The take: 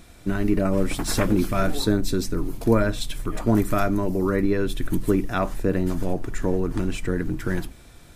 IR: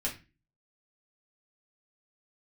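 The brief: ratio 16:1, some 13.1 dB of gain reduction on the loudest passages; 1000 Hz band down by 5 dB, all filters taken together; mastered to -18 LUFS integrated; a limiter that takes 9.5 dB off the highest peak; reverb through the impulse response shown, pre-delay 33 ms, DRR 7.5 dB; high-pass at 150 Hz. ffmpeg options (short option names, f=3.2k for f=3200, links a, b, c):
-filter_complex "[0:a]highpass=150,equalizer=f=1k:t=o:g=-7.5,acompressor=threshold=-29dB:ratio=16,alimiter=level_in=3dB:limit=-24dB:level=0:latency=1,volume=-3dB,asplit=2[a][b];[1:a]atrim=start_sample=2205,adelay=33[c];[b][c]afir=irnorm=-1:irlink=0,volume=-11.5dB[d];[a][d]amix=inputs=2:normalize=0,volume=18.5dB"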